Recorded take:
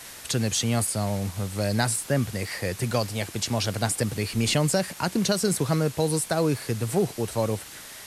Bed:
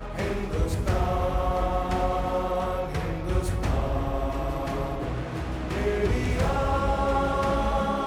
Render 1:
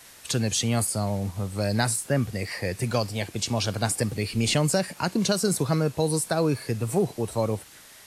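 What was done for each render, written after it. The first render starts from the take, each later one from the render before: noise print and reduce 7 dB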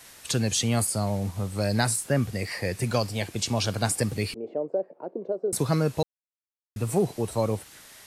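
4.34–5.53 s: Butterworth band-pass 470 Hz, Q 1.6; 6.03–6.76 s: mute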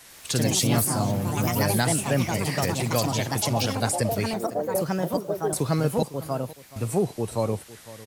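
delay 503 ms -18 dB; ever faster or slower copies 102 ms, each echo +3 st, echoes 3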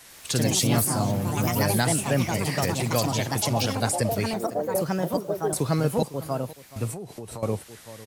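6.91–7.43 s: compression 16:1, threshold -32 dBFS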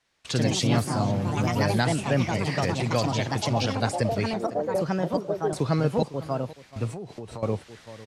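gate with hold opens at -35 dBFS; low-pass 4.9 kHz 12 dB/octave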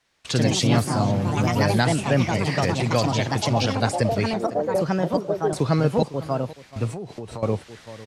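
trim +3.5 dB

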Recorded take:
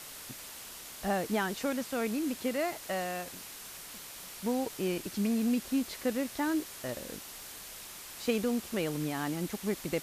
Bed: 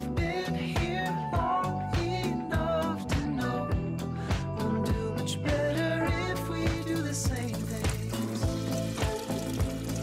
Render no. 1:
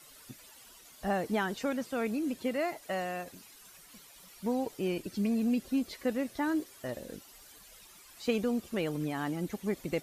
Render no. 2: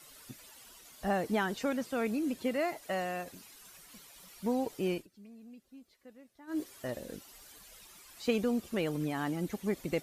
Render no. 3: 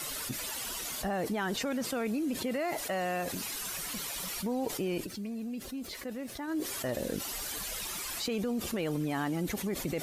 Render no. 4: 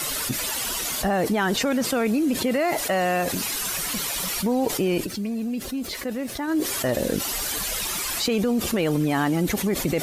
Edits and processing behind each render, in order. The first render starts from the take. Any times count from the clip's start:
noise reduction 13 dB, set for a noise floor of -46 dBFS
4.93–6.61 s: dip -23 dB, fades 0.14 s
peak limiter -26 dBFS, peak gain reduction 9.5 dB; level flattener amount 70%
trim +10 dB

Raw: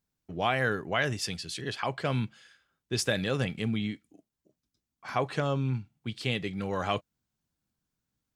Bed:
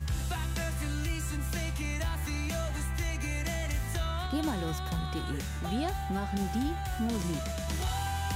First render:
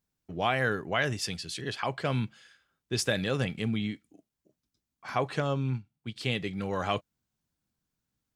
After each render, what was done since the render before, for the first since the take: 5.42–6.16 s: upward expansion, over -44 dBFS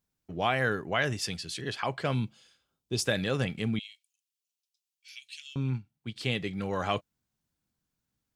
2.14–3.05 s: peaking EQ 1.7 kHz -13.5 dB 0.75 oct; 3.79–5.56 s: elliptic high-pass 2.6 kHz, stop band 60 dB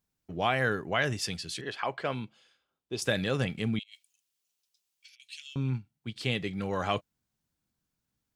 1.61–3.02 s: tone controls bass -10 dB, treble -9 dB; 3.83–5.20 s: compressor with a negative ratio -55 dBFS, ratio -0.5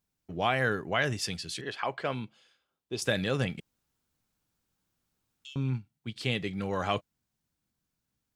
3.60–5.45 s: room tone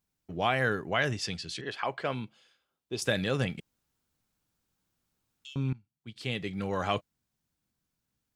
1.11–1.71 s: low-pass 7 kHz; 5.73–6.62 s: fade in, from -20.5 dB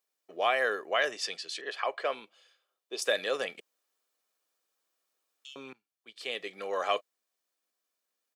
high-pass 360 Hz 24 dB/octave; comb 1.7 ms, depth 34%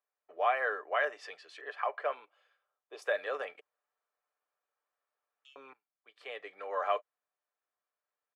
three-band isolator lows -23 dB, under 470 Hz, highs -21 dB, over 2 kHz; comb 6.8 ms, depth 36%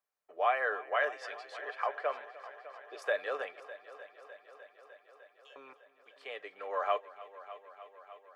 multi-head delay 302 ms, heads first and second, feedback 70%, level -19 dB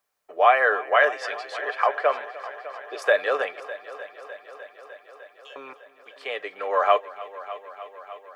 trim +12 dB

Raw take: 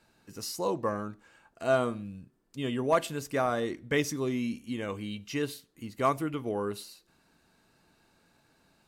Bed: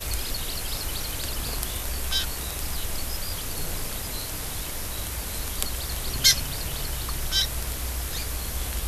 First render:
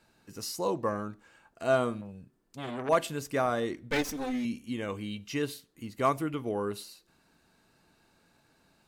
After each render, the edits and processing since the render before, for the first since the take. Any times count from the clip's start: 2.01–2.89 s: transformer saturation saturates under 1.3 kHz; 3.91–4.45 s: comb filter that takes the minimum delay 3.9 ms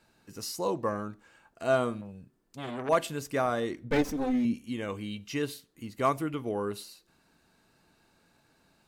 3.84–4.54 s: tilt shelf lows +5.5 dB, about 1.2 kHz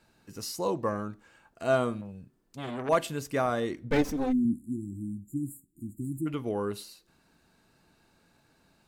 4.33–6.26 s: spectral selection erased 370–6900 Hz; bass shelf 230 Hz +3 dB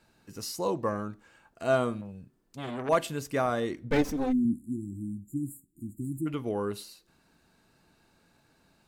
no audible change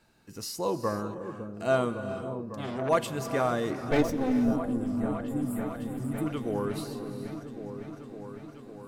delay with an opening low-pass 555 ms, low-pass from 400 Hz, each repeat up 1 oct, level -6 dB; gated-style reverb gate 470 ms rising, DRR 10.5 dB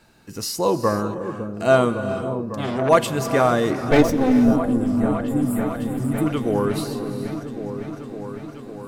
trim +9.5 dB

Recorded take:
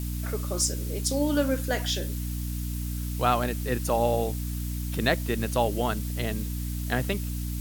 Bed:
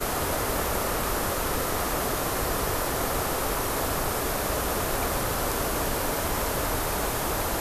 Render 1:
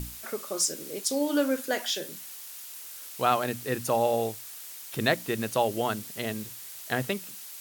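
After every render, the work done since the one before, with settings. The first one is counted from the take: hum notches 60/120/180/240/300 Hz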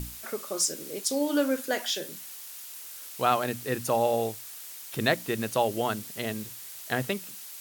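no audible change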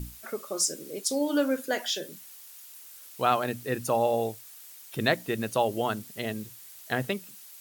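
noise reduction 7 dB, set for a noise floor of -43 dBFS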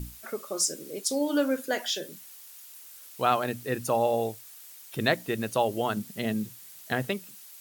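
5.96–6.93 s: peaking EQ 190 Hz +9.5 dB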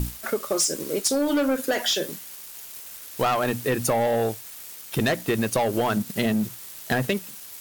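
waveshaping leveller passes 3; compression, threshold -20 dBFS, peak gain reduction 6 dB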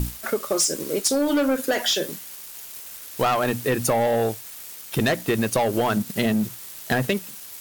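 trim +1.5 dB

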